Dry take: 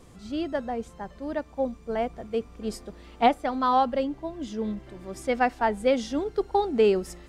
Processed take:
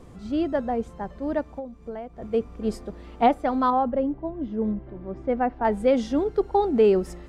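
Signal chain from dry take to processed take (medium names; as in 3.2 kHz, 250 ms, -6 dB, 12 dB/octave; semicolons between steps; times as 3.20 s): treble shelf 2 kHz -10.5 dB; in parallel at -1 dB: peak limiter -21 dBFS, peak gain reduction 11 dB; 1.50–2.22 s: on the sum: compression 12:1, threshold -32 dBFS, peak gain reduction 14 dB; 3.70–5.65 s: tape spacing loss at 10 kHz 39 dB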